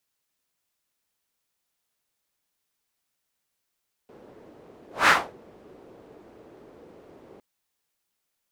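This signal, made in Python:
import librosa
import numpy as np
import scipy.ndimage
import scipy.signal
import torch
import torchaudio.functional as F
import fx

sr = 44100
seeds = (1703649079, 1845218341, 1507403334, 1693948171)

y = fx.whoosh(sr, seeds[0], length_s=3.31, peak_s=0.99, rise_s=0.19, fall_s=0.28, ends_hz=410.0, peak_hz=1600.0, q=1.8, swell_db=33.5)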